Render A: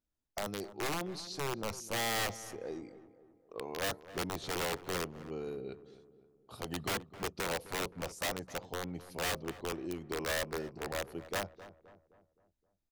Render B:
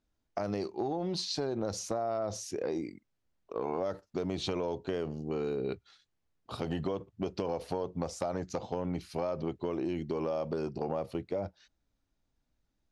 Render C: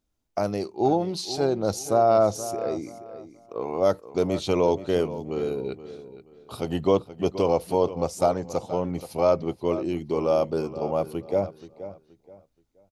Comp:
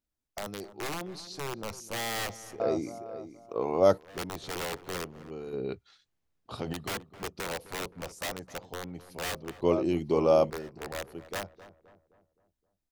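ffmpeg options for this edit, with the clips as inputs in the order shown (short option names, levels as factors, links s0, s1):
-filter_complex "[2:a]asplit=2[s0][s1];[0:a]asplit=4[s2][s3][s4][s5];[s2]atrim=end=2.602[s6];[s0]atrim=start=2.598:end=3.982[s7];[s3]atrim=start=3.978:end=5.532[s8];[1:a]atrim=start=5.528:end=6.732[s9];[s4]atrim=start=6.728:end=9.622[s10];[s1]atrim=start=9.618:end=10.502[s11];[s5]atrim=start=10.498[s12];[s6][s7]acrossfade=d=0.004:c1=hsin:c2=hsin[s13];[s13][s8]acrossfade=d=0.004:c1=hsin:c2=hsin[s14];[s14][s9]acrossfade=d=0.004:c1=hsin:c2=hsin[s15];[s15][s10]acrossfade=d=0.004:c1=hsin:c2=hsin[s16];[s16][s11]acrossfade=d=0.004:c1=hsin:c2=hsin[s17];[s17][s12]acrossfade=d=0.004:c1=hsin:c2=hsin"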